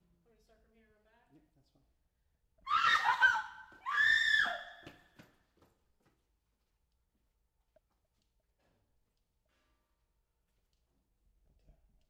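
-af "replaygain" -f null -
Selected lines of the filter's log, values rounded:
track_gain = +14.2 dB
track_peak = 0.116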